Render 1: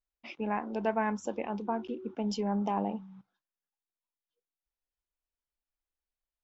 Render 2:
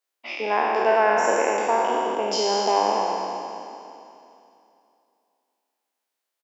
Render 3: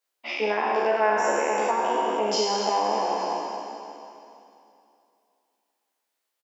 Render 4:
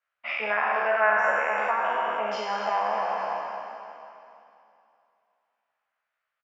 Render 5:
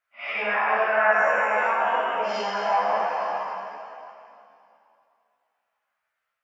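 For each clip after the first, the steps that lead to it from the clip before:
peak hold with a decay on every bin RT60 2.71 s; high-pass filter 340 Hz 24 dB per octave; slap from a distant wall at 35 metres, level −8 dB; level +8.5 dB
downward compressor 2.5 to 1, threshold −24 dBFS, peak gain reduction 6.5 dB; double-tracking delay 14 ms −2 dB
drawn EQ curve 150 Hz 0 dB, 330 Hz −20 dB, 630 Hz 0 dB, 900 Hz −4 dB, 1,300 Hz +9 dB, 2,500 Hz +1 dB, 3,900 Hz −11 dB, 10,000 Hz −26 dB
random phases in long frames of 200 ms; level +2.5 dB

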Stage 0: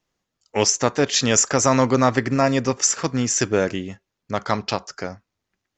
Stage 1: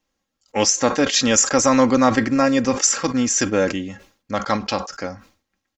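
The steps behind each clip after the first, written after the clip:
comb filter 3.7 ms, depth 58%
level that may fall only so fast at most 140 dB per second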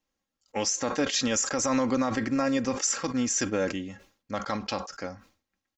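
brickwall limiter −8.5 dBFS, peak gain reduction 6.5 dB
level −7.5 dB

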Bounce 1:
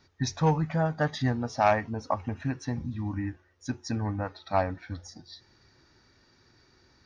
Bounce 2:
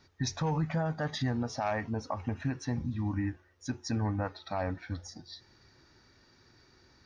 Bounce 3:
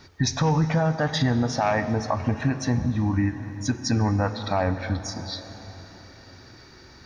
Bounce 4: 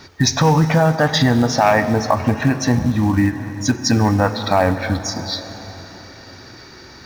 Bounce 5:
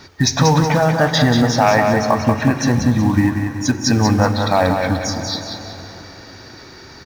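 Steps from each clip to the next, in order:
brickwall limiter −22.5 dBFS, peak gain reduction 10.5 dB
dense smooth reverb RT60 3.8 s, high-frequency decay 0.75×, DRR 11 dB; in parallel at +1 dB: downward compressor, threshold −39 dBFS, peak gain reduction 12 dB; on the sum: level +6.5 dB
low-shelf EQ 110 Hz −7.5 dB; in parallel at −5.5 dB: floating-point word with a short mantissa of 2 bits; on the sum: level +5.5 dB
repeating echo 186 ms, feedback 38%, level −6 dB

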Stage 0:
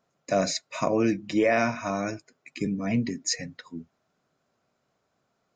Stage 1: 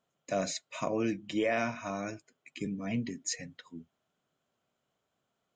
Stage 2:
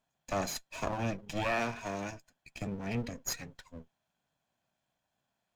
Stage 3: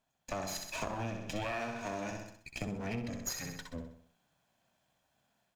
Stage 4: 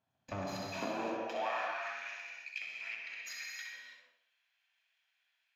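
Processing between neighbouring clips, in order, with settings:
thirty-one-band graphic EQ 3,150 Hz +10 dB, 5,000 Hz −4 dB, 8,000 Hz +7 dB; level −7.5 dB
lower of the sound and its delayed copy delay 1.2 ms
automatic gain control gain up to 5.5 dB; on a send: repeating echo 64 ms, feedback 45%, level −6.5 dB; on the sum: downward compressor 6 to 1, threshold −35 dBFS, peak gain reduction 13.5 dB
high-pass filter sweep 100 Hz → 2,200 Hz, 0:00.34–0:01.95; moving average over 5 samples; reverb whose tail is shaped and stops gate 360 ms flat, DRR −1.5 dB; level −3.5 dB

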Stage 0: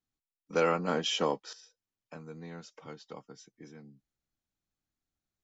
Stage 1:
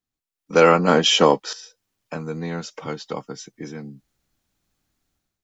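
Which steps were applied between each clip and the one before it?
automatic gain control gain up to 14 dB
level +2 dB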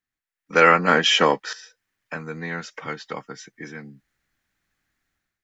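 parametric band 1,800 Hz +14.5 dB 0.94 octaves
level −5 dB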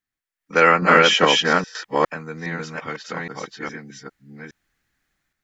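delay that plays each chunk backwards 410 ms, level −0.5 dB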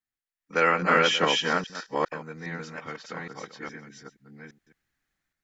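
delay that plays each chunk backwards 139 ms, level −13.5 dB
level −7.5 dB

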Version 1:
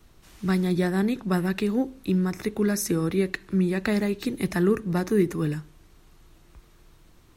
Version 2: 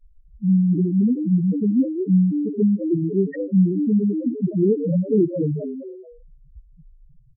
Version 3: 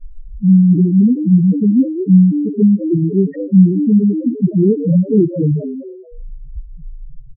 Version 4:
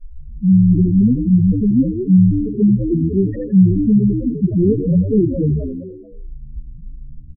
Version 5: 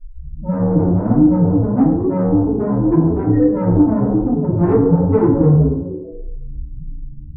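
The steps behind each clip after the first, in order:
echo with shifted repeats 213 ms, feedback 46%, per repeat +110 Hz, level −7.5 dB; low-pass that shuts in the quiet parts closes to 380 Hz, open at −13.5 dBFS; spectral peaks only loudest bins 2; level +8 dB
spectral tilt −4 dB per octave; level −1.5 dB
echo with shifted repeats 83 ms, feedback 39%, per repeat −81 Hz, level −9 dB; level −2.5 dB
soft clipping −15.5 dBFS, distortion −9 dB; feedback delay network reverb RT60 0.79 s, low-frequency decay 0.75×, high-frequency decay 0.25×, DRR −7.5 dB; level −2.5 dB

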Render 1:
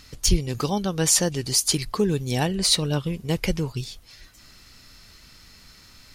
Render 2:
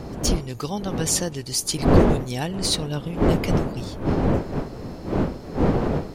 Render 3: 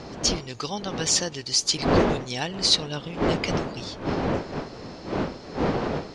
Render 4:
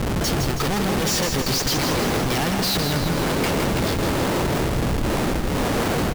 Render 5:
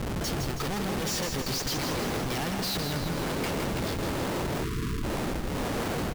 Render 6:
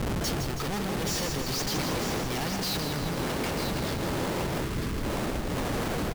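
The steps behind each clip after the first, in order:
wind on the microphone 370 Hz −20 dBFS; level −3.5 dB
low-pass filter 5,900 Hz 24 dB per octave; spectral tilt +2.5 dB per octave
low-pass filter 7,400 Hz 12 dB per octave; comparator with hysteresis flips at −35 dBFS; on a send: repeating echo 162 ms, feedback 58%, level −6 dB; on the sum: level +4 dB
time-frequency box erased 0:04.64–0:05.03, 470–960 Hz; level −8.5 dB
brickwall limiter −27.5 dBFS, peak gain reduction 5 dB; single-tap delay 944 ms −7.5 dB; level +2.5 dB

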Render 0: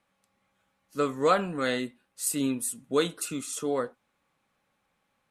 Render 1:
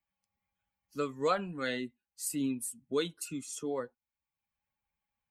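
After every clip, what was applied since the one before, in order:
spectral dynamics exaggerated over time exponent 1.5
multiband upward and downward compressor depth 40%
level −3.5 dB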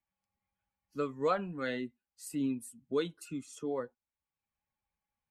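high-shelf EQ 3,500 Hz −11.5 dB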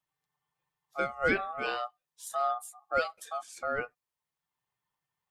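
ring modulation 970 Hz
level +5.5 dB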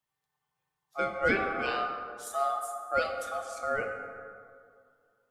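dense smooth reverb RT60 2.2 s, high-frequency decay 0.45×, DRR 3.5 dB

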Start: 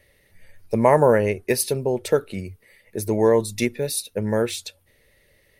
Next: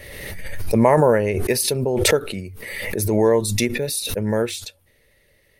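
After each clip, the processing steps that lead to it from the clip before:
background raised ahead of every attack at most 33 dB per second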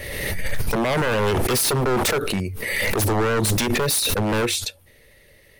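in parallel at −10.5 dB: hard clipping −18.5 dBFS, distortion −7 dB
on the sum: brickwall limiter −12 dBFS, peak gain reduction 10 dB
wave folding −20 dBFS
level +4.5 dB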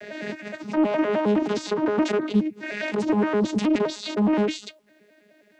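vocoder with an arpeggio as carrier bare fifth, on G#3, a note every 104 ms
bit-depth reduction 12 bits, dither none
highs frequency-modulated by the lows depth 0.5 ms

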